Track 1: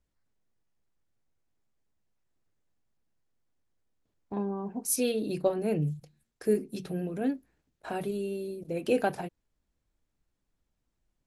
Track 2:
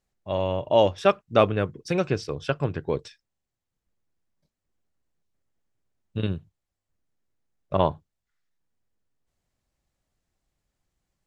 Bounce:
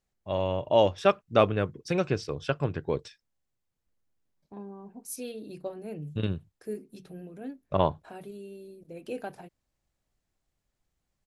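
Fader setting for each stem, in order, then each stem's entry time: -10.0 dB, -2.5 dB; 0.20 s, 0.00 s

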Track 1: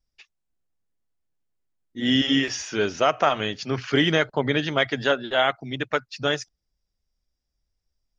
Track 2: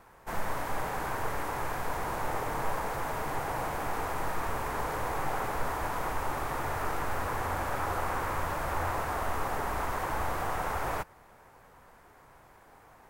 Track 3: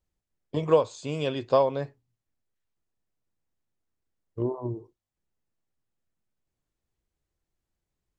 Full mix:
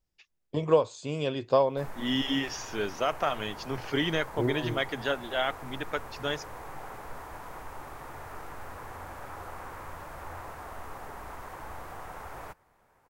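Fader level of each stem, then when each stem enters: -8.0 dB, -10.0 dB, -1.5 dB; 0.00 s, 1.50 s, 0.00 s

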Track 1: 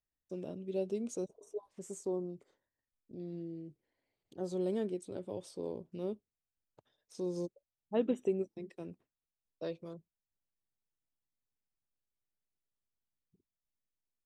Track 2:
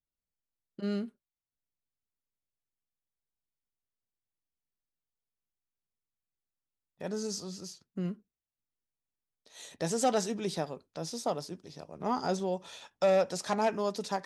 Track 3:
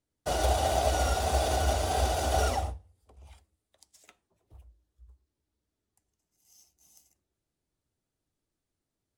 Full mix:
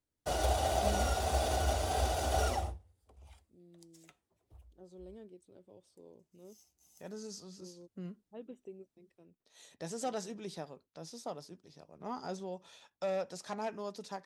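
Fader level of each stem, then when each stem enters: -16.5 dB, -9.5 dB, -4.5 dB; 0.40 s, 0.00 s, 0.00 s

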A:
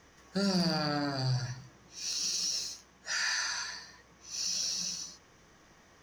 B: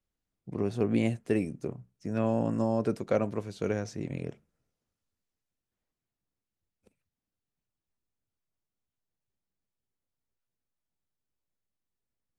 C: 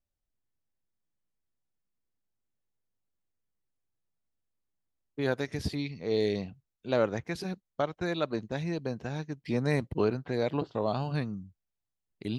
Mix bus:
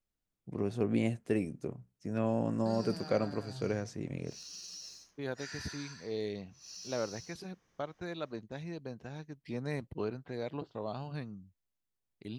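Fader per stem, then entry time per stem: -14.0 dB, -3.5 dB, -9.0 dB; 2.30 s, 0.00 s, 0.00 s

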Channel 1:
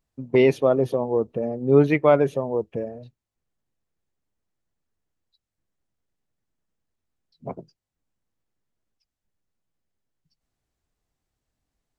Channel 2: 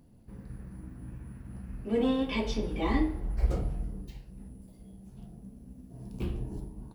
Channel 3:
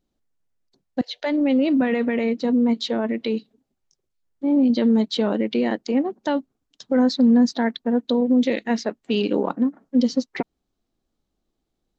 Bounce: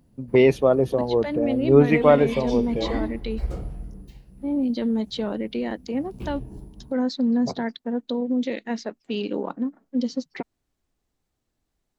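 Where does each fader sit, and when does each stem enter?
+1.0 dB, -1.0 dB, -6.0 dB; 0.00 s, 0.00 s, 0.00 s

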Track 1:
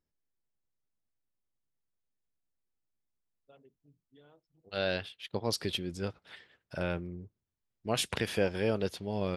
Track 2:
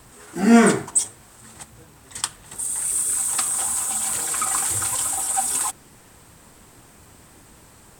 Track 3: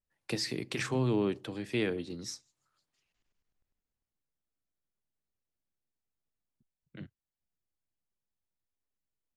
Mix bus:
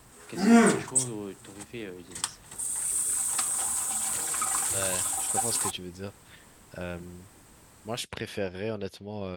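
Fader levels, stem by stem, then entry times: -3.0 dB, -5.5 dB, -8.0 dB; 0.00 s, 0.00 s, 0.00 s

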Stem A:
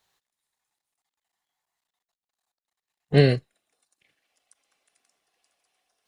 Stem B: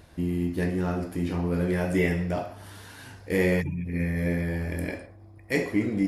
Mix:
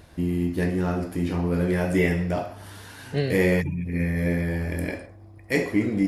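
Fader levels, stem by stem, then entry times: -8.5 dB, +2.5 dB; 0.00 s, 0.00 s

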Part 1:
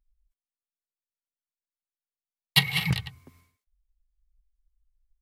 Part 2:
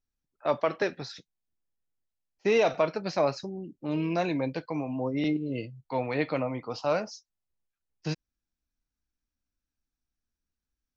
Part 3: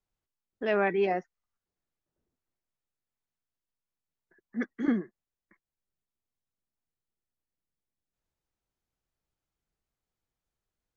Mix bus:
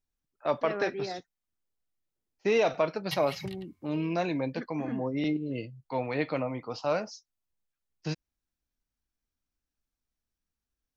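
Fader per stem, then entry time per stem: -16.0 dB, -1.5 dB, -9.0 dB; 0.55 s, 0.00 s, 0.00 s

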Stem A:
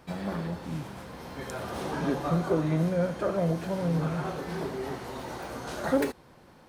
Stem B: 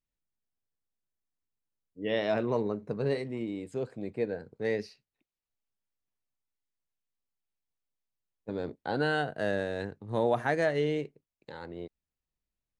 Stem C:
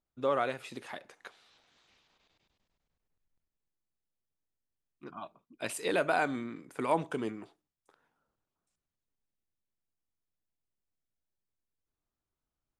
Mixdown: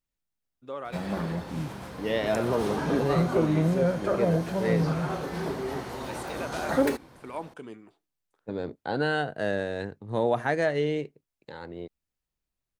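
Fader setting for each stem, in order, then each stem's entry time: +2.0 dB, +2.0 dB, -7.5 dB; 0.85 s, 0.00 s, 0.45 s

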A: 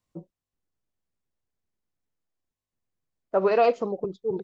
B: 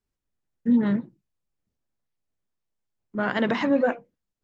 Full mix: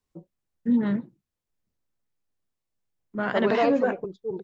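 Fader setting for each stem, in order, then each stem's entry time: -3.5 dB, -2.0 dB; 0.00 s, 0.00 s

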